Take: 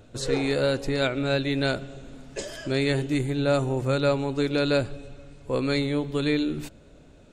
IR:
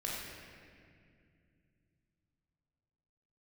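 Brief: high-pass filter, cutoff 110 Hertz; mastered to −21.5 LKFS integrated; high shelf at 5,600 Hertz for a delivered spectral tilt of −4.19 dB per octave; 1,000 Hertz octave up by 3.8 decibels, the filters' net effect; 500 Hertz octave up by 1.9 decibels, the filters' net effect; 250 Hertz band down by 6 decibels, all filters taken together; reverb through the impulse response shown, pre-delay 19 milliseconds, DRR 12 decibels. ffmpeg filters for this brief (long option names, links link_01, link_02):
-filter_complex "[0:a]highpass=110,equalizer=frequency=250:width_type=o:gain=-8.5,equalizer=frequency=500:width_type=o:gain=3,equalizer=frequency=1000:width_type=o:gain=5.5,highshelf=frequency=5600:gain=-8,asplit=2[link_01][link_02];[1:a]atrim=start_sample=2205,adelay=19[link_03];[link_02][link_03]afir=irnorm=-1:irlink=0,volume=-15.5dB[link_04];[link_01][link_04]amix=inputs=2:normalize=0,volume=4dB"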